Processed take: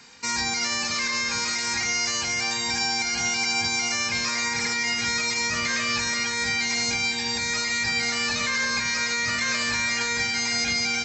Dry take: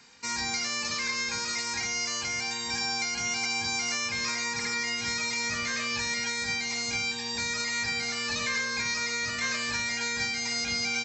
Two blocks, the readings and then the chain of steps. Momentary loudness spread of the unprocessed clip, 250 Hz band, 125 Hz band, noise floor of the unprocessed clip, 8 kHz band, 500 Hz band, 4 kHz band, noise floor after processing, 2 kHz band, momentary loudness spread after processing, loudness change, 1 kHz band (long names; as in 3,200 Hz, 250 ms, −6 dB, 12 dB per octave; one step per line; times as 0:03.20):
2 LU, +5.5 dB, +5.0 dB, −34 dBFS, +5.0 dB, +4.0 dB, +5.0 dB, −28 dBFS, +5.0 dB, 2 LU, +5.0 dB, +5.5 dB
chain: brickwall limiter −22.5 dBFS, peak gain reduction 5 dB
delay that swaps between a low-pass and a high-pass 334 ms, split 2,000 Hz, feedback 61%, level −8.5 dB
level +6 dB